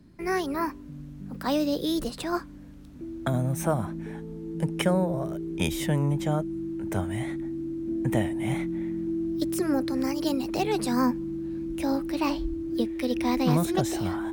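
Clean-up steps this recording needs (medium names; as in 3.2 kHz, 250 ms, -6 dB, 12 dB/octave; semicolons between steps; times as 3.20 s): band-stop 330 Hz, Q 30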